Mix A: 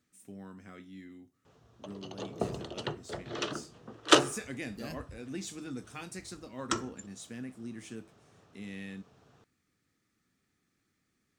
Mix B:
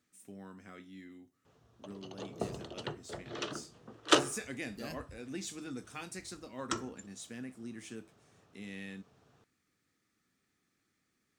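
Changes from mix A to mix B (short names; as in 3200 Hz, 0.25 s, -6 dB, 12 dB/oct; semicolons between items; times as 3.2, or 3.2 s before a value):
speech: add low shelf 200 Hz -6 dB; background -4.0 dB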